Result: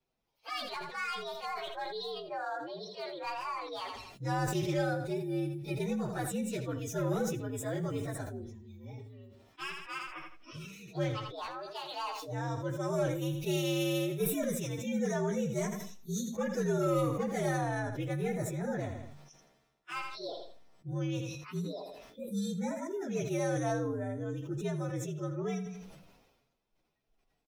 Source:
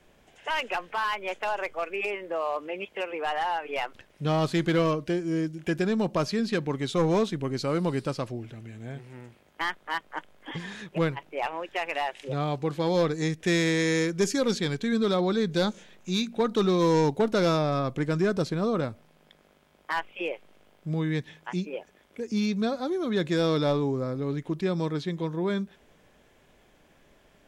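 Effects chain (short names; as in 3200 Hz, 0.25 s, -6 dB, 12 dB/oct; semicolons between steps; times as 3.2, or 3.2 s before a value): inharmonic rescaling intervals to 120%; spectral noise reduction 14 dB; feedback echo 82 ms, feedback 24%, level -14 dB; sustainer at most 47 dB/s; gain -6.5 dB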